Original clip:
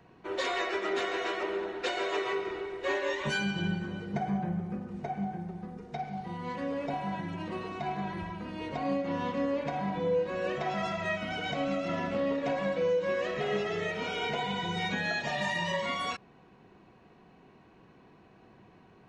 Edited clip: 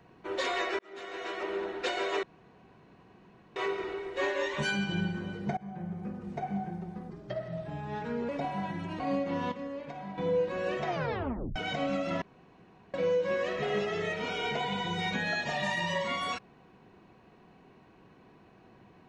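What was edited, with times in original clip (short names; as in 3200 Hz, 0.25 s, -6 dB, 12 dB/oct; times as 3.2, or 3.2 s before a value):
0.79–1.63 fade in
2.23 insert room tone 1.33 s
4.24–5.11 fade in equal-power, from -20.5 dB
5.77–6.78 speed 85%
7.49–8.78 cut
9.3–9.96 gain -8.5 dB
10.66 tape stop 0.68 s
12–12.72 room tone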